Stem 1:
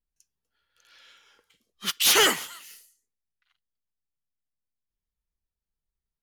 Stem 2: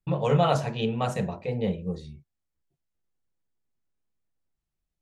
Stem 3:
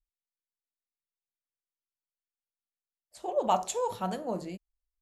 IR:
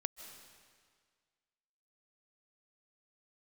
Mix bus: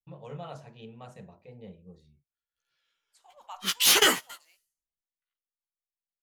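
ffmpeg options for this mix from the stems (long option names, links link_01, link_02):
-filter_complex "[0:a]flanger=delay=15:depth=2.1:speed=1.2,adelay=1800,volume=3dB[link_01];[1:a]volume=-19dB[link_02];[2:a]highpass=frequency=980:width=0.5412,highpass=frequency=980:width=1.3066,volume=-11.5dB,asplit=2[link_03][link_04];[link_04]apad=whole_len=353891[link_05];[link_01][link_05]sidechaingate=range=-23dB:threshold=-56dB:ratio=16:detection=peak[link_06];[link_06][link_02][link_03]amix=inputs=3:normalize=0"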